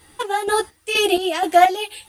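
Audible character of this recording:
chopped level 2.1 Hz, depth 65%, duty 45%
a quantiser's noise floor 12 bits, dither triangular
a shimmering, thickened sound

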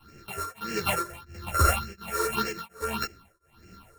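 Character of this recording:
a buzz of ramps at a fixed pitch in blocks of 32 samples
phaser sweep stages 6, 1.7 Hz, lowest notch 200–1,000 Hz
tremolo triangle 1.4 Hz, depth 100%
a shimmering, thickened sound

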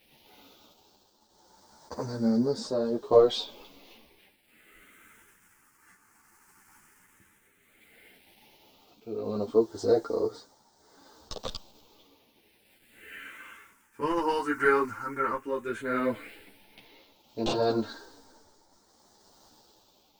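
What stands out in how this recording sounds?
a quantiser's noise floor 10 bits, dither none
phaser sweep stages 4, 0.12 Hz, lowest notch 600–2,500 Hz
tremolo triangle 0.63 Hz, depth 65%
a shimmering, thickened sound

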